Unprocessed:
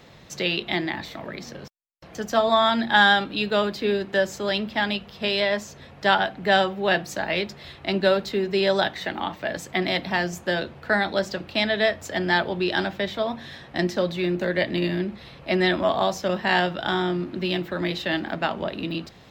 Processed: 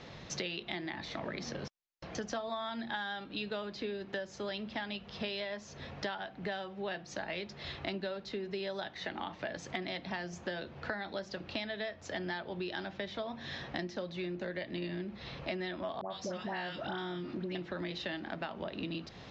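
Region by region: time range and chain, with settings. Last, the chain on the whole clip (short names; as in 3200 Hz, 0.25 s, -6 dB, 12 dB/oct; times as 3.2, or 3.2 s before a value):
16.01–17.55 HPF 62 Hz + dispersion highs, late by 0.102 s, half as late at 1100 Hz + compressor 1.5:1, threshold -29 dBFS
whole clip: steep low-pass 6600 Hz 48 dB/oct; compressor 16:1, threshold -35 dBFS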